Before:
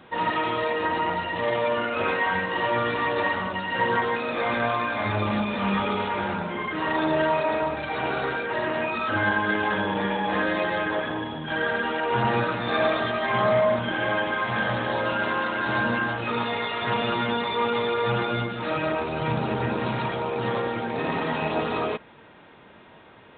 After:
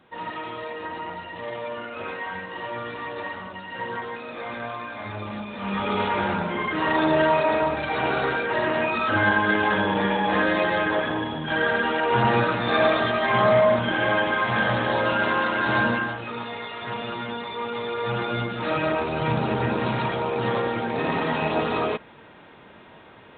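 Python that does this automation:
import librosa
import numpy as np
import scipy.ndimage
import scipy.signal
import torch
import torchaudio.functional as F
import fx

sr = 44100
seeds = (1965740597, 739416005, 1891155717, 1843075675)

y = fx.gain(x, sr, db=fx.line((5.52, -8.0), (6.01, 3.0), (15.84, 3.0), (16.3, -6.0), (17.66, -6.0), (18.64, 2.0)))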